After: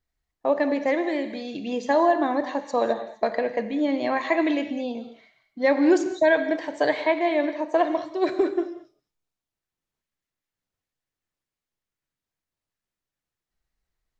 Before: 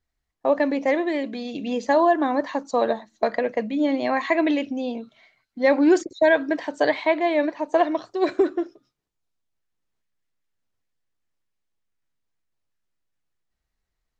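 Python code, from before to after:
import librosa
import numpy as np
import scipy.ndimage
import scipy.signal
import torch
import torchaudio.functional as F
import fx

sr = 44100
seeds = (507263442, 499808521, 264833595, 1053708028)

y = fx.rev_gated(x, sr, seeds[0], gate_ms=240, shape='flat', drr_db=9.0)
y = F.gain(torch.from_numpy(y), -2.0).numpy()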